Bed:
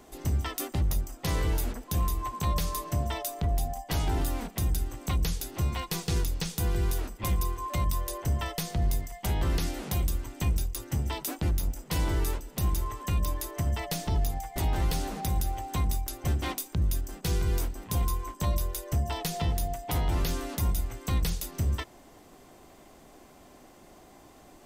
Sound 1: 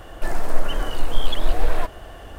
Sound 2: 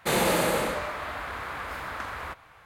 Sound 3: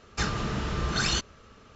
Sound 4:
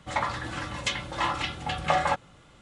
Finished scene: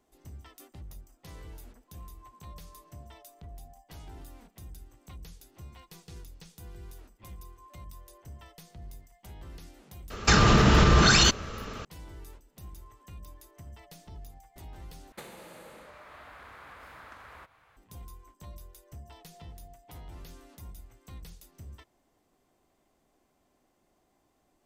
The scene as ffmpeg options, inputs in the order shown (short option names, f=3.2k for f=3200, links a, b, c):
-filter_complex "[0:a]volume=-18.5dB[a];[3:a]alimiter=level_in=23dB:limit=-1dB:release=50:level=0:latency=1[b];[2:a]acompressor=threshold=-36dB:ratio=16:attack=37:release=641:knee=1:detection=peak[c];[a]asplit=2[d][e];[d]atrim=end=15.124[f];[c]atrim=end=2.65,asetpts=PTS-STARTPTS,volume=-9.5dB[g];[e]atrim=start=17.766[h];[b]atrim=end=1.75,asetpts=PTS-STARTPTS,volume=-9dB,afade=t=in:d=0.004:c=hsin,afade=t=out:st=1.746:d=0.004:c=hsin,adelay=445410S[i];[f][g]acrossfade=d=0.004:c1=hsin:c2=hsin[j];[j][h]acrossfade=d=0.004:c1=hsin:c2=hsin[k];[k][i]amix=inputs=2:normalize=0"